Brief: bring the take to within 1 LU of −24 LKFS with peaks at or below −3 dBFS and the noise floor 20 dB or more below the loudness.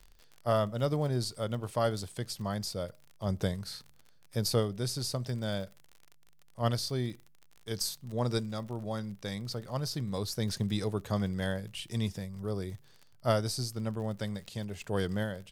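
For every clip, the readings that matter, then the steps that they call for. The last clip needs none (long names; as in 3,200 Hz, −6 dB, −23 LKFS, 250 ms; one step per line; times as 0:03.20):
crackle rate 45 per second; integrated loudness −34.0 LKFS; sample peak −14.0 dBFS; target loudness −24.0 LKFS
→ click removal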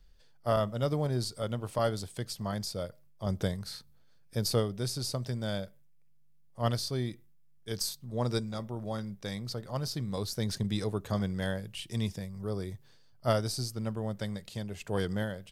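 crackle rate 0.064 per second; integrated loudness −34.0 LKFS; sample peak −14.0 dBFS; target loudness −24.0 LKFS
→ level +10 dB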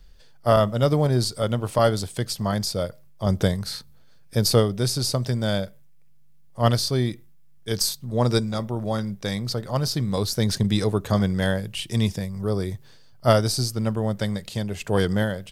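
integrated loudness −24.0 LKFS; sample peak −4.0 dBFS; background noise floor −48 dBFS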